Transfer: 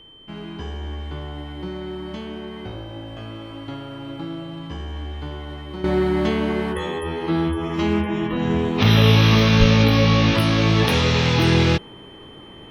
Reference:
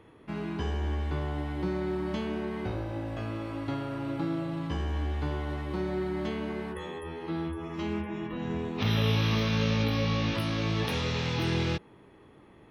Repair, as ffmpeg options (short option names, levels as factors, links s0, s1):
-filter_complex "[0:a]bandreject=f=3100:w=30,asplit=3[s0][s1][s2];[s0]afade=t=out:st=9.59:d=0.02[s3];[s1]highpass=f=140:w=0.5412,highpass=f=140:w=1.3066,afade=t=in:st=9.59:d=0.02,afade=t=out:st=9.71:d=0.02[s4];[s2]afade=t=in:st=9.71:d=0.02[s5];[s3][s4][s5]amix=inputs=3:normalize=0,agate=range=0.0891:threshold=0.0398,asetnsamples=n=441:p=0,asendcmd='5.84 volume volume -12dB',volume=1"